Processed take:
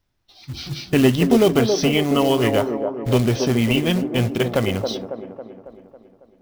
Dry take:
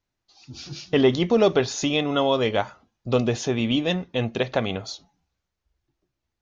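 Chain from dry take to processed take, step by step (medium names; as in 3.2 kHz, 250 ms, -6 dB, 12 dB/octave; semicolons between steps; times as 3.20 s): bass shelf 150 Hz +7 dB; in parallel at -1.5 dB: compression 5:1, threshold -32 dBFS, peak gain reduction 17.5 dB; on the sum: formant shift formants -2 st; short-mantissa float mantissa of 2-bit; feedback echo behind a band-pass 275 ms, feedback 55%, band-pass 480 Hz, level -4 dB; trim +1 dB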